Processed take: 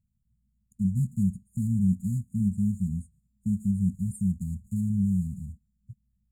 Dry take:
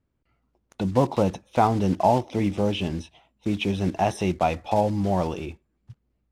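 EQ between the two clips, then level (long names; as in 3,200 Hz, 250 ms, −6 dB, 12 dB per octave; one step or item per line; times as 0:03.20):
linear-phase brick-wall band-stop 220–6,700 Hz
parametric band 240 Hz +9.5 dB 0.37 octaves
0.0 dB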